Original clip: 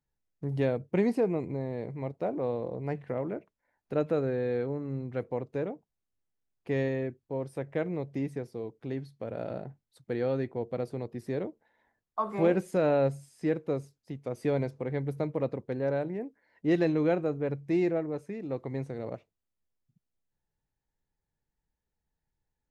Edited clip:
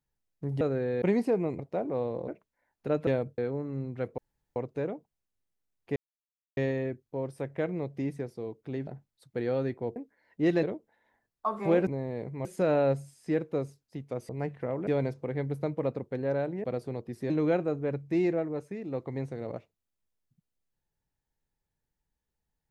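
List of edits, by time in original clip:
0.61–0.92 swap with 4.13–4.54
1.49–2.07 move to 12.6
2.76–3.34 move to 14.44
5.34 insert room tone 0.38 s
6.74 insert silence 0.61 s
9.04–9.61 cut
10.7–11.36 swap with 16.21–16.88

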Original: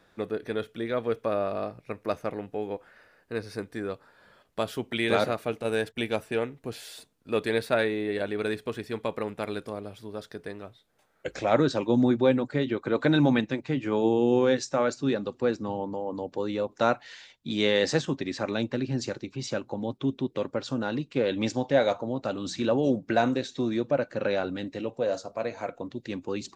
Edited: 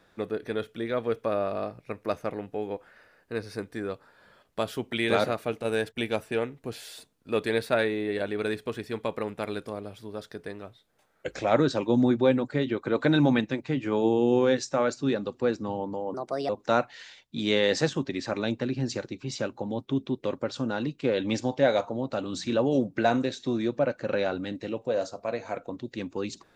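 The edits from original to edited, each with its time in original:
16.14–16.61 speed 134%

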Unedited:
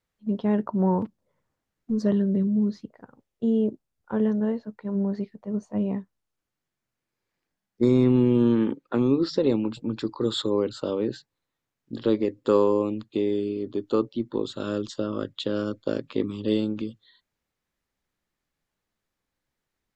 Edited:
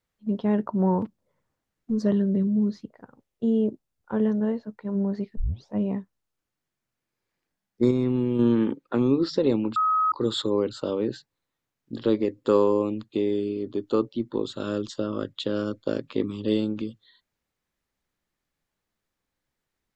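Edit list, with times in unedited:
5.37 tape start 0.36 s
7.91–8.39 gain -5 dB
9.76–10.12 bleep 1270 Hz -19 dBFS

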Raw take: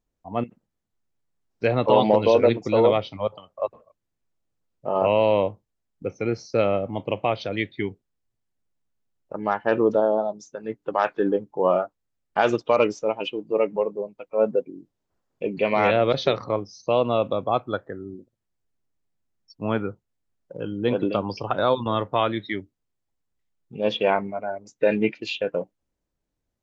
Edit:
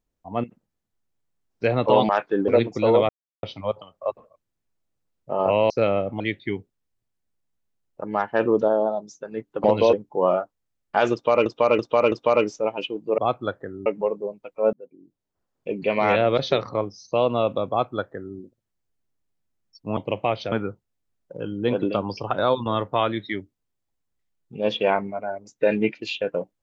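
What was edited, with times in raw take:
2.09–2.38 swap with 10.96–11.35
2.99 insert silence 0.34 s
5.26–6.47 cut
6.97–7.52 move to 19.72
12.55–12.88 loop, 4 plays
14.48–15.91 fade in equal-power
17.44–18.12 copy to 13.61

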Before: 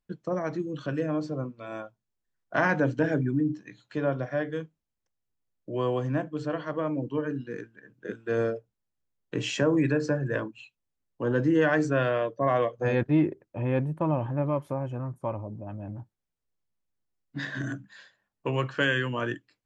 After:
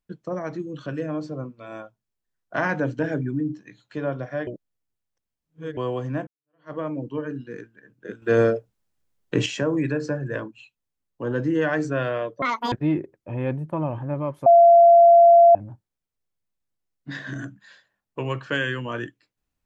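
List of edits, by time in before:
4.47–5.77 reverse
6.27–6.72 fade in exponential
8.22–9.46 gain +8.5 dB
12.42–13 speed 193%
14.74–15.83 bleep 684 Hz -8.5 dBFS

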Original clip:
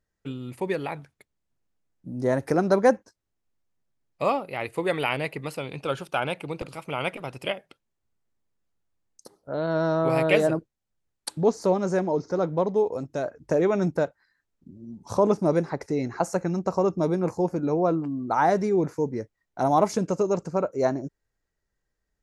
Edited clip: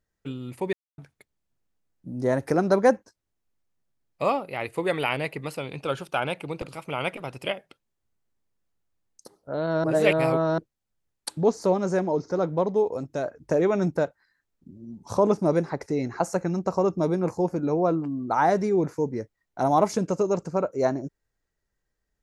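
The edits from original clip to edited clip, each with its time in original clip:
0.73–0.98 mute
9.84–10.58 reverse

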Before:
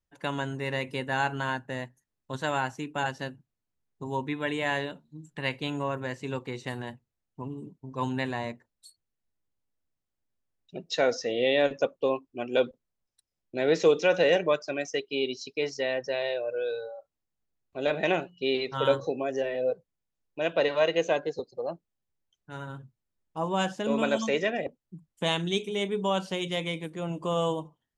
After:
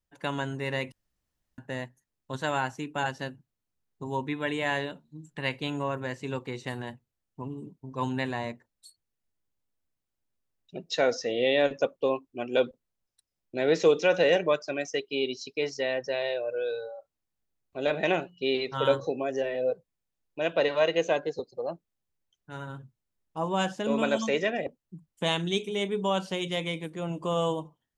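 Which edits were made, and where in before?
0.92–1.58 room tone

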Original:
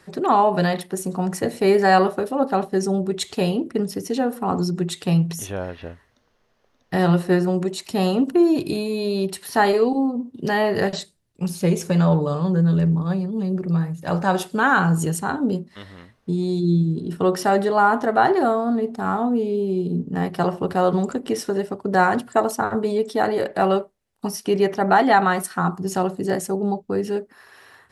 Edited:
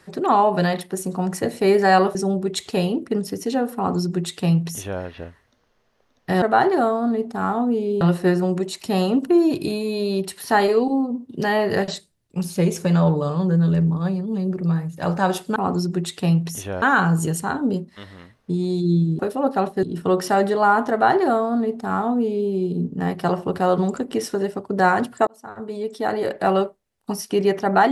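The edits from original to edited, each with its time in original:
2.15–2.79 move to 16.98
4.4–5.66 copy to 14.61
18.06–19.65 copy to 7.06
22.42–23.53 fade in

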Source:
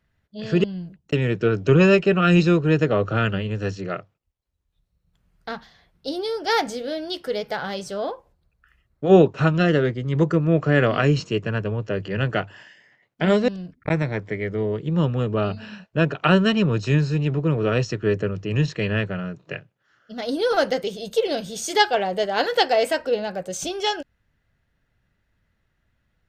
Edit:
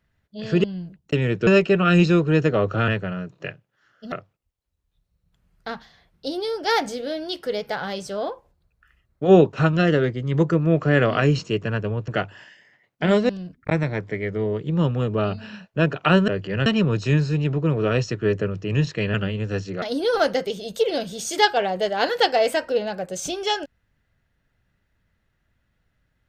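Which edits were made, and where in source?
1.47–1.84 cut
3.25–3.93 swap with 18.95–20.19
11.89–12.27 move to 16.47

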